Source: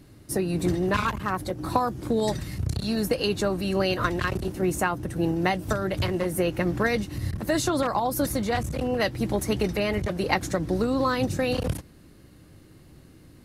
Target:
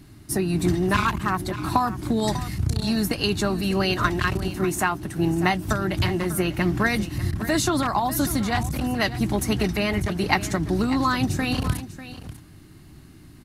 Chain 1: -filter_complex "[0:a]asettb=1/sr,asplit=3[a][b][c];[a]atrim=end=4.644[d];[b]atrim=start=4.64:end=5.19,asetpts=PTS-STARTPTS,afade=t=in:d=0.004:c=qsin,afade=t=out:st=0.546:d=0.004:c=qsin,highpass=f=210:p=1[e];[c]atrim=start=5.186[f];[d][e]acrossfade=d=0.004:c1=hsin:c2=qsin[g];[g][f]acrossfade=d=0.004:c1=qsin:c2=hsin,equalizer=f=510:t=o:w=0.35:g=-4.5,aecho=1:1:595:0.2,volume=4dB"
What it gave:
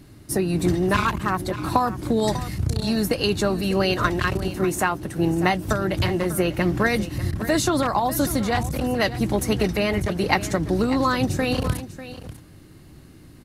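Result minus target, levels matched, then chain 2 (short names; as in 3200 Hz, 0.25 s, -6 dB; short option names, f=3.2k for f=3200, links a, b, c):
500 Hz band +3.0 dB
-filter_complex "[0:a]asettb=1/sr,asplit=3[a][b][c];[a]atrim=end=4.644[d];[b]atrim=start=4.64:end=5.19,asetpts=PTS-STARTPTS,afade=t=in:d=0.004:c=qsin,afade=t=out:st=0.546:d=0.004:c=qsin,highpass=f=210:p=1[e];[c]atrim=start=5.186[f];[d][e]acrossfade=d=0.004:c1=hsin:c2=qsin[g];[g][f]acrossfade=d=0.004:c1=qsin:c2=hsin,equalizer=f=510:t=o:w=0.35:g=-16,aecho=1:1:595:0.2,volume=4dB"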